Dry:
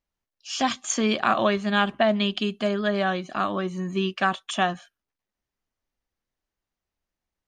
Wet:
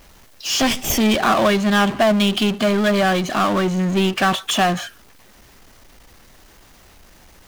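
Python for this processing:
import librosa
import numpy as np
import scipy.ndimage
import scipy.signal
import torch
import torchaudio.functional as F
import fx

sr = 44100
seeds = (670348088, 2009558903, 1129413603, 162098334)

y = fx.lower_of_two(x, sr, delay_ms=0.37, at=(0.62, 1.16))
y = fx.power_curve(y, sr, exponent=0.5)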